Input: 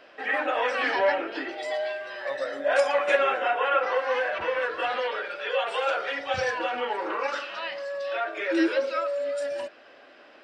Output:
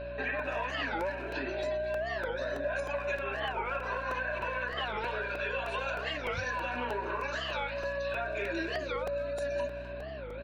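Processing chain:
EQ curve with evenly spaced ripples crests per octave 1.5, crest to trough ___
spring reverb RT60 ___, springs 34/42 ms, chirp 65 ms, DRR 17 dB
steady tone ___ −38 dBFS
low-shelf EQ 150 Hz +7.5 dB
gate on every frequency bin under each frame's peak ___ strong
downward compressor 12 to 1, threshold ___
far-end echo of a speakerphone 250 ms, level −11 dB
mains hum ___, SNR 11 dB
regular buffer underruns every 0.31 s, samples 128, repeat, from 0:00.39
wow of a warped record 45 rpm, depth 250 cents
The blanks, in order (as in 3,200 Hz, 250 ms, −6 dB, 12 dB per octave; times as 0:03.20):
13 dB, 1.4 s, 570 Hz, −45 dB, −31 dBFS, 60 Hz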